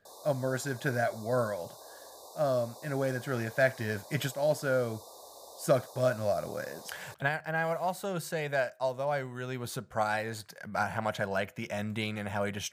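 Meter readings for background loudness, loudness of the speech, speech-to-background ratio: -49.0 LUFS, -32.5 LUFS, 16.5 dB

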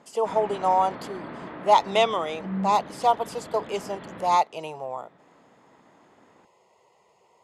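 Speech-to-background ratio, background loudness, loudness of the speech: 13.0 dB, -38.0 LUFS, -25.0 LUFS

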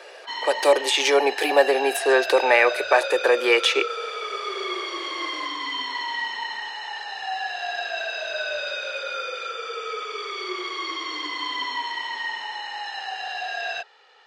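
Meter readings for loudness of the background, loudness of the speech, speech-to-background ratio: -29.0 LUFS, -20.0 LUFS, 9.0 dB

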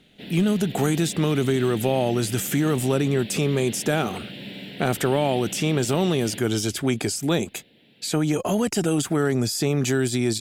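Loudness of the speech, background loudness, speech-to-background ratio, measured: -23.5 LUFS, -37.0 LUFS, 13.5 dB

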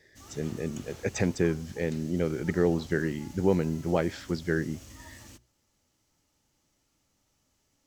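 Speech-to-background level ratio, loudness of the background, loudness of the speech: 19.0 dB, -48.5 LUFS, -29.5 LUFS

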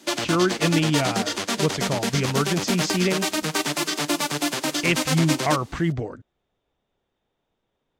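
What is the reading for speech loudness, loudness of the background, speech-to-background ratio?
-24.5 LUFS, -25.0 LUFS, 0.5 dB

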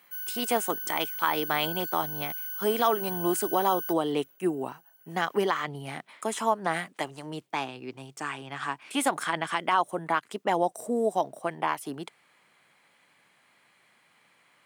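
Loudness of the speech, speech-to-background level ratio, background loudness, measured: -29.5 LUFS, 3.5 dB, -33.0 LUFS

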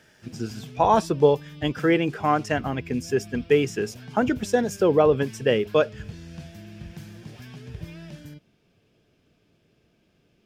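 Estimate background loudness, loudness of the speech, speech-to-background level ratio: -41.5 LUFS, -23.0 LUFS, 18.5 dB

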